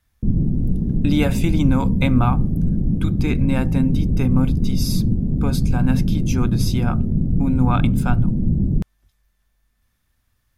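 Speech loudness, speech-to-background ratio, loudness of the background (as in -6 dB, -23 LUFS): -24.0 LUFS, -3.0 dB, -21.0 LUFS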